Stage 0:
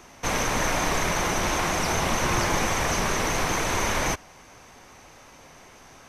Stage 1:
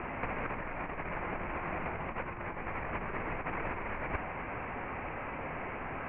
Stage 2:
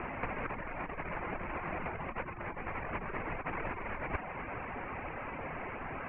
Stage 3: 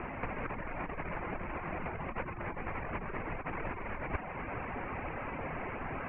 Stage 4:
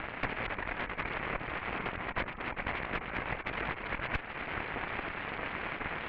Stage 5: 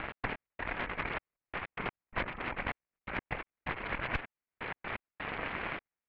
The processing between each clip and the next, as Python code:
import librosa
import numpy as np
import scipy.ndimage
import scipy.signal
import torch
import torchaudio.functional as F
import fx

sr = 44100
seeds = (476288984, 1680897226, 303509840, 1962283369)

y1 = scipy.signal.sosfilt(scipy.signal.butter(12, 2600.0, 'lowpass', fs=sr, output='sos'), x)
y1 = fx.over_compress(y1, sr, threshold_db=-33.0, ratio=-0.5)
y2 = fx.dereverb_blind(y1, sr, rt60_s=0.54)
y3 = fx.low_shelf(y2, sr, hz=430.0, db=3.5)
y3 = fx.rider(y3, sr, range_db=10, speed_s=0.5)
y3 = F.gain(torch.from_numpy(y3), -1.0).numpy()
y4 = fx.cheby_harmonics(y3, sr, harmonics=(3, 6), levels_db=(-12, -9), full_scale_db=-21.0)
y4 = fx.lowpass_res(y4, sr, hz=2300.0, q=1.8)
y5 = fx.step_gate(y4, sr, bpm=127, pattern='x.x..xxxxx...', floor_db=-60.0, edge_ms=4.5)